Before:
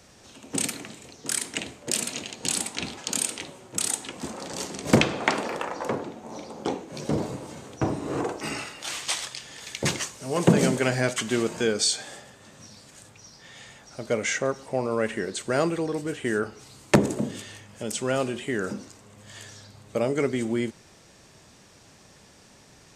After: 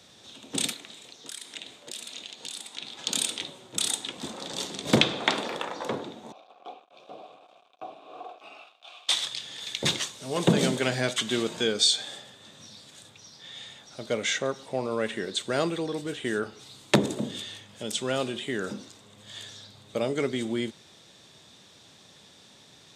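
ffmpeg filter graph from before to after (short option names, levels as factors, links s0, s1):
-filter_complex "[0:a]asettb=1/sr,asplit=3[s0][s1][s2];[s0]atrim=end=0.734[s3];[s1]atrim=start=0.73:end=2.99,asetpts=PTS-STARTPTS,afade=t=in:d=0.004:c=qsin,afade=t=out:st=2.256:d=0.004:c=qsin,lowshelf=f=300:g=-10.5,acompressor=threshold=0.00708:ratio=2:attack=3.2:release=140:knee=1:detection=peak[s4];[s2]atrim=start=2.986[s5];[s3][s4]acrossfade=d=0.004:c1=hsin:c2=qsin[s6];[s6][s5]acrossfade=d=0.004:c1=qsin:c2=hsin,asettb=1/sr,asplit=3[s7][s8][s9];[s7]atrim=end=6.324[s10];[s8]atrim=start=6.32:end=9.09,asetpts=PTS-STARTPTS,afade=t=in:d=0.004:c=qsin,afade=t=out:st=2.766:d=0.004:c=qsin,acrusher=bits=5:mix=0:aa=0.5,asplit=3[s11][s12][s13];[s11]bandpass=f=730:t=q:w=8,volume=1[s14];[s12]bandpass=f=1090:t=q:w=8,volume=0.501[s15];[s13]bandpass=f=2440:t=q:w=8,volume=0.355[s16];[s14][s15][s16]amix=inputs=3:normalize=0,lowshelf=f=130:g=-8[s17];[s9]atrim=start=9.086[s18];[s10][s17]acrossfade=d=0.004:c1=hsin:c2=qsin[s19];[s19][s18]acrossfade=d=0.004:c1=qsin:c2=hsin,highpass=100,equalizer=f=3600:w=3.7:g=14.5,volume=0.708"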